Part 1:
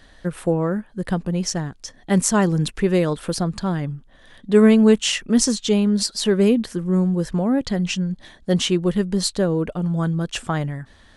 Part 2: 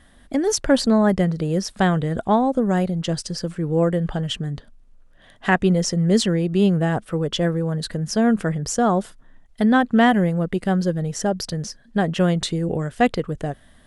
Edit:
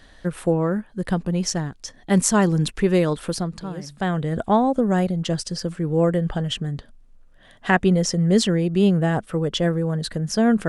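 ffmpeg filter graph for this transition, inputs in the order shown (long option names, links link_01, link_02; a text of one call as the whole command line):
ffmpeg -i cue0.wav -i cue1.wav -filter_complex "[0:a]apad=whole_dur=10.68,atrim=end=10.68,atrim=end=4.36,asetpts=PTS-STARTPTS[link_01];[1:a]atrim=start=1.01:end=8.47,asetpts=PTS-STARTPTS[link_02];[link_01][link_02]acrossfade=duration=1.14:curve1=qua:curve2=qua" out.wav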